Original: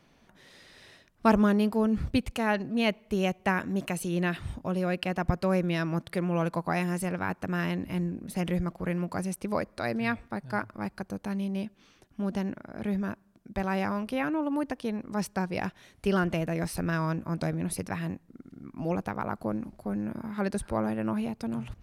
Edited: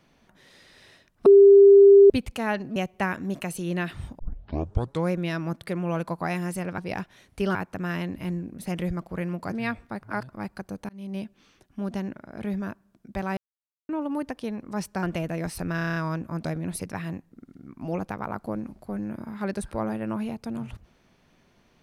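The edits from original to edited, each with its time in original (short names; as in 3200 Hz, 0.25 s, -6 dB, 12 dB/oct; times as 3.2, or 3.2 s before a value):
1.26–2.1 bleep 398 Hz -8.5 dBFS
2.76–3.22 cut
4.65 tape start 0.93 s
9.21–9.93 cut
10.44–10.7 reverse
11.3–11.58 fade in
13.78–14.3 mute
15.44–16.21 move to 7.24
16.93 stutter 0.03 s, 8 plays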